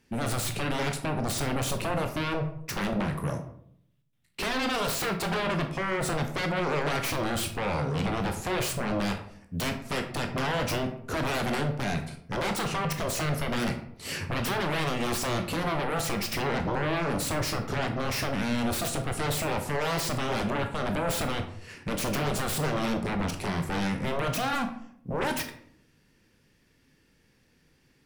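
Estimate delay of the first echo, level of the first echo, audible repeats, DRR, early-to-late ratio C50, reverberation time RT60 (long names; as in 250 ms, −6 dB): no echo audible, no echo audible, no echo audible, 4.5 dB, 9.0 dB, 0.65 s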